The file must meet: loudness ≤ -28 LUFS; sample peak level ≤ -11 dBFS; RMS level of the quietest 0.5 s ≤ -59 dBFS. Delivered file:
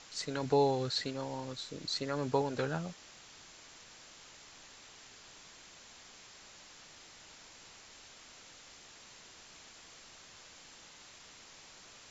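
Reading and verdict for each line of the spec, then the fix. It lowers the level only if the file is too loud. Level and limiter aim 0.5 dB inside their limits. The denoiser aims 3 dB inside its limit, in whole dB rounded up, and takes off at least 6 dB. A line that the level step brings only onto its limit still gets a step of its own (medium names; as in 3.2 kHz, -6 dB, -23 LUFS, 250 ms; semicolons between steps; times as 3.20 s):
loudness -34.5 LUFS: pass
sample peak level -16.5 dBFS: pass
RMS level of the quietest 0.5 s -55 dBFS: fail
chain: noise reduction 7 dB, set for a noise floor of -55 dBFS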